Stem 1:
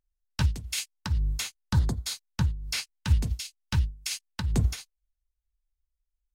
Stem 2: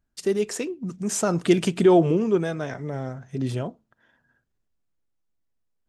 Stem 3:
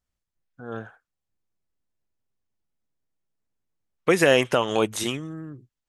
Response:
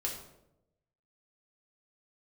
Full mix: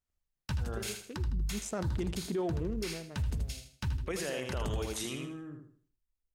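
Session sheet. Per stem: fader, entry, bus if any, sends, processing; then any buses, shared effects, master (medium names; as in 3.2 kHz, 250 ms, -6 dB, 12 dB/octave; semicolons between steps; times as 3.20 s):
-5.0 dB, 0.10 s, no send, echo send -7.5 dB, peaking EQ 4.7 kHz -3.5 dB 1.9 oct
-9.5 dB, 0.50 s, no send, echo send -22 dB, local Wiener filter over 41 samples; auto duck -18 dB, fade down 1.55 s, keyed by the third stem
-7.5 dB, 0.00 s, no send, echo send -5 dB, peak limiter -16.5 dBFS, peak gain reduction 11 dB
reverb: none
echo: feedback delay 79 ms, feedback 33%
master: peak limiter -26 dBFS, peak gain reduction 10.5 dB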